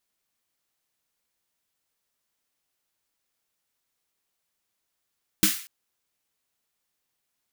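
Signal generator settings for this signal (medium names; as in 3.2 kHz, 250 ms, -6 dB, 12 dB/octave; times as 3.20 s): snare drum length 0.24 s, tones 200 Hz, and 310 Hz, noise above 1.4 kHz, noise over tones 1 dB, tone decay 0.15 s, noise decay 0.46 s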